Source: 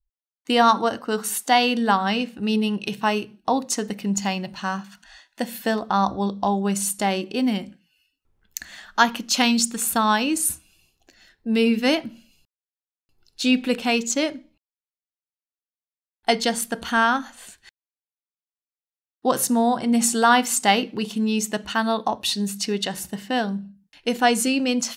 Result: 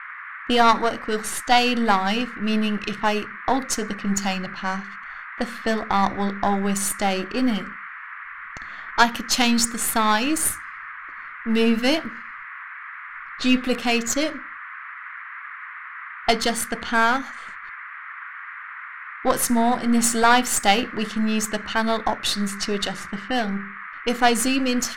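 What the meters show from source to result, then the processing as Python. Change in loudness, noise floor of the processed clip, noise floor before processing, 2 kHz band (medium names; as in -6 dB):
0.0 dB, -38 dBFS, under -85 dBFS, +2.0 dB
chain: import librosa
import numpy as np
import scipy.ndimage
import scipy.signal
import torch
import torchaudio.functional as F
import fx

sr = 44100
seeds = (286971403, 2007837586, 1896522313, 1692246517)

y = np.where(x < 0.0, 10.0 ** (-7.0 / 20.0) * x, x)
y = fx.env_lowpass(y, sr, base_hz=1800.0, full_db=-22.5)
y = fx.dmg_noise_band(y, sr, seeds[0], low_hz=1100.0, high_hz=2100.0, level_db=-40.0)
y = F.gain(torch.from_numpy(y), 3.0).numpy()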